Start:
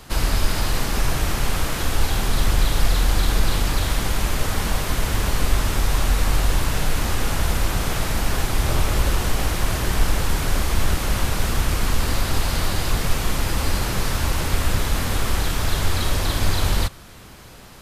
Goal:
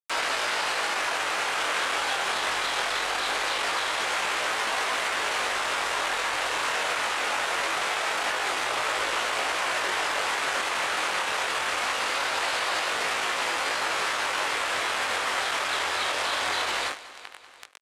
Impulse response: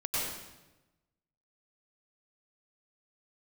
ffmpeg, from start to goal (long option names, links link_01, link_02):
-filter_complex "[0:a]highpass=56,bandreject=frequency=50:width_type=h:width=6,bandreject=frequency=100:width_type=h:width=6,bandreject=frequency=150:width_type=h:width=6,bandreject=frequency=200:width_type=h:width=6,bandreject=frequency=250:width_type=h:width=6,bandreject=frequency=300:width_type=h:width=6,bandreject=frequency=350:width_type=h:width=6,bandreject=frequency=400:width_type=h:width=6,bandreject=frequency=450:width_type=h:width=6,asplit=2[link_01][link_02];[link_02]aeval=exprs='0.0473*(abs(mod(val(0)/0.0473+3,4)-2)-1)':channel_layout=same,volume=-4.5dB[link_03];[link_01][link_03]amix=inputs=2:normalize=0,aeval=exprs='0.299*(cos(1*acos(clip(val(0)/0.299,-1,1)))-cos(1*PI/2))+0.00376*(cos(4*acos(clip(val(0)/0.299,-1,1)))-cos(4*PI/2))+0.00596*(cos(6*acos(clip(val(0)/0.299,-1,1)))-cos(6*PI/2))+0.0106*(cos(8*acos(clip(val(0)/0.299,-1,1)))-cos(8*PI/2))':channel_layout=same,acrusher=bits=4:mix=0:aa=0.000001,acrossover=split=380 2900:gain=0.1 1 0.1[link_04][link_05][link_06];[link_04][link_05][link_06]amix=inputs=3:normalize=0,flanger=delay=18:depth=4.8:speed=0.22,aemphasis=mode=production:type=riaa,alimiter=limit=-24dB:level=0:latency=1,lowpass=frequency=8600:width=0.5412,lowpass=frequency=8600:width=1.3066,aecho=1:1:192|384|576|768:0.141|0.0706|0.0353|0.0177,acompressor=mode=upward:threshold=-42dB:ratio=2.5,volume=8dB"